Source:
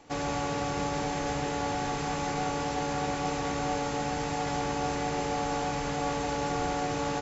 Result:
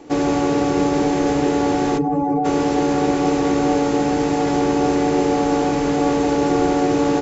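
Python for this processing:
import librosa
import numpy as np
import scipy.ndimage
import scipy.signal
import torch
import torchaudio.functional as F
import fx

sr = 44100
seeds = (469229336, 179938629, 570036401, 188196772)

y = fx.spec_expand(x, sr, power=2.3, at=(1.97, 2.44), fade=0.02)
y = fx.peak_eq(y, sr, hz=340.0, db=14.5, octaves=1.1)
y = F.gain(torch.from_numpy(y), 6.0).numpy()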